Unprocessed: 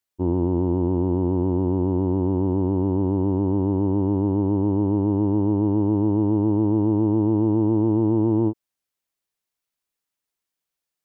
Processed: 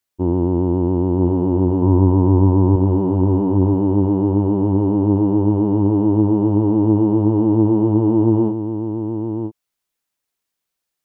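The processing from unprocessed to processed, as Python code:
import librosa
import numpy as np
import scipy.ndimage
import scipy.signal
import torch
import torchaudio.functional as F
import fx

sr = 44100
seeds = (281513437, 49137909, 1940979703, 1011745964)

y = fx.graphic_eq_31(x, sr, hz=(100, 250, 1000), db=(10, 5, 8), at=(1.82, 2.76))
y = y + 10.0 ** (-7.5 / 20.0) * np.pad(y, (int(981 * sr / 1000.0), 0))[:len(y)]
y = F.gain(torch.from_numpy(y), 4.0).numpy()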